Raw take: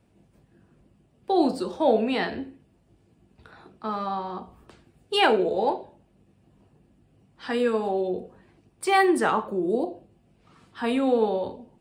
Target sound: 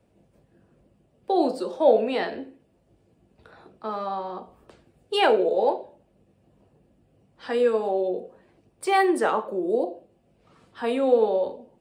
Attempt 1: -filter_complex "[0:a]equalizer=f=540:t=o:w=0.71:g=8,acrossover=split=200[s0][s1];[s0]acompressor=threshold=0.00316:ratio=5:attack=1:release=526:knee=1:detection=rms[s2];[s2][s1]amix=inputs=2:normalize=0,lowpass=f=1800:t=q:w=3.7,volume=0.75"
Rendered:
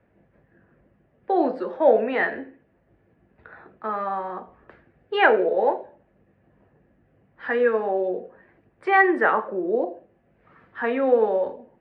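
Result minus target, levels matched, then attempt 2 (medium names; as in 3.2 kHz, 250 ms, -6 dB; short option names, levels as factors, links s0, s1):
2 kHz band +7.5 dB
-filter_complex "[0:a]equalizer=f=540:t=o:w=0.71:g=8,acrossover=split=200[s0][s1];[s0]acompressor=threshold=0.00316:ratio=5:attack=1:release=526:knee=1:detection=rms[s2];[s2][s1]amix=inputs=2:normalize=0,volume=0.75"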